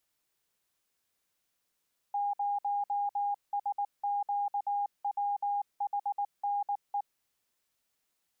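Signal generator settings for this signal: Morse "0SQWHNE" 19 wpm 813 Hz -28 dBFS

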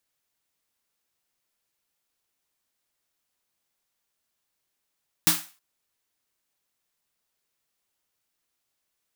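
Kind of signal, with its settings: snare drum length 0.32 s, tones 170 Hz, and 310 Hz, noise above 770 Hz, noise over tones 9.5 dB, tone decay 0.25 s, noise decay 0.35 s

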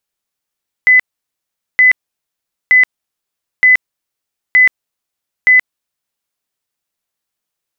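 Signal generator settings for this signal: tone bursts 2.01 kHz, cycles 253, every 0.92 s, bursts 6, -4 dBFS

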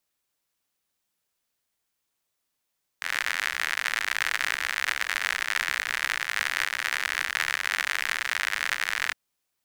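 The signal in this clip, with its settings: rain from filtered ticks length 6.11 s, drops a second 85, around 1.8 kHz, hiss -29 dB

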